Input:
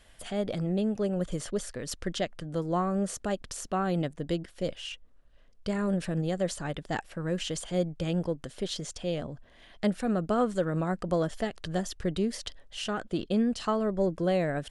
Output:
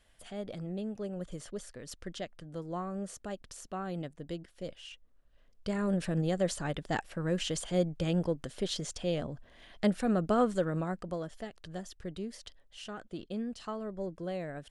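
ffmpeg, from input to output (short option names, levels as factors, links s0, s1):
-af "volume=0.944,afade=t=in:st=4.9:d=1.32:silence=0.375837,afade=t=out:st=10.44:d=0.76:silence=0.316228"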